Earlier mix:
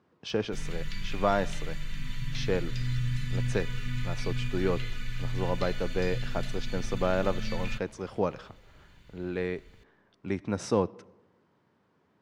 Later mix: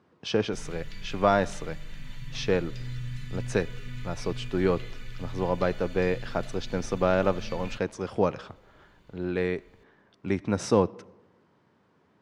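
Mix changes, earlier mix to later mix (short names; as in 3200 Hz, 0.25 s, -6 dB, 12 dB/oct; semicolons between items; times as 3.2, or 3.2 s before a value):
speech +4.0 dB; background -5.5 dB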